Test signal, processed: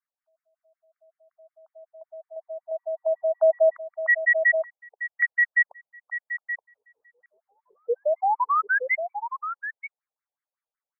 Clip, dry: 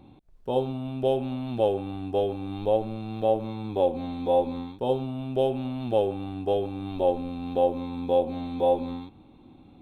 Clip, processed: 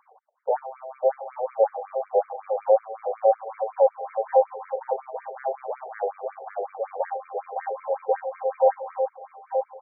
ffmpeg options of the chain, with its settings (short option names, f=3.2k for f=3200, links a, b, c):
-filter_complex "[0:a]asplit=2[a][b];[b]alimiter=limit=-19dB:level=0:latency=1:release=185,volume=-0.5dB[c];[a][c]amix=inputs=2:normalize=0,acontrast=66,asplit=2[d][e];[e]adelay=874.6,volume=-7dB,highshelf=f=4k:g=-19.7[f];[d][f]amix=inputs=2:normalize=0,afftfilt=real='re*between(b*sr/1024,580*pow(1700/580,0.5+0.5*sin(2*PI*5.4*pts/sr))/1.41,580*pow(1700/580,0.5+0.5*sin(2*PI*5.4*pts/sr))*1.41)':imag='im*between(b*sr/1024,580*pow(1700/580,0.5+0.5*sin(2*PI*5.4*pts/sr))/1.41,580*pow(1700/580,0.5+0.5*sin(2*PI*5.4*pts/sr))*1.41)':win_size=1024:overlap=0.75,volume=-2.5dB"